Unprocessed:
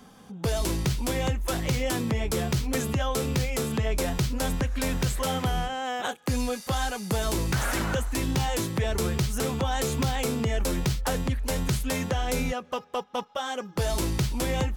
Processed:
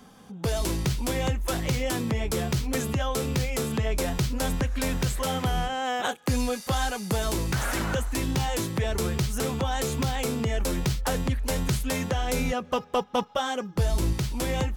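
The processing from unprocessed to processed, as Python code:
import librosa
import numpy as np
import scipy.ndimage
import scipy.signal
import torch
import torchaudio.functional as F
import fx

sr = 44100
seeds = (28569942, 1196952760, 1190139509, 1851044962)

y = fx.low_shelf(x, sr, hz=210.0, db=9.5, at=(12.53, 14.13))
y = fx.rider(y, sr, range_db=10, speed_s=0.5)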